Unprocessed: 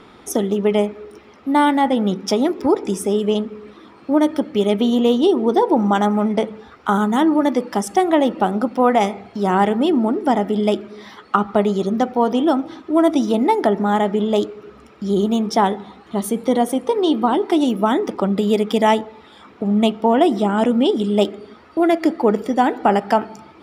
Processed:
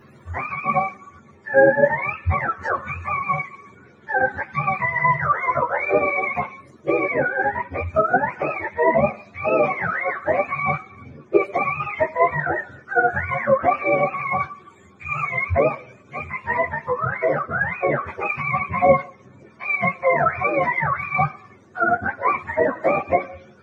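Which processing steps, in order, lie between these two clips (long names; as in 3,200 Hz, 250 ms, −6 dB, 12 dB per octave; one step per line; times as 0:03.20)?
frequency axis turned over on the octave scale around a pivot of 690 Hz
dynamic equaliser 590 Hz, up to +5 dB, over −29 dBFS, Q 0.94
string-ensemble chorus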